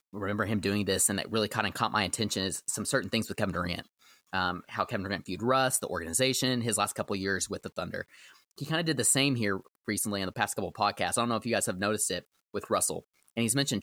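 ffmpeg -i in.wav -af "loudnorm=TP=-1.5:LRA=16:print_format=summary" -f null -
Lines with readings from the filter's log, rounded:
Input Integrated:    -29.6 LUFS
Input True Peak:     -11.5 dBTP
Input LRA:             1.9 LU
Input Threshold:     -39.9 LUFS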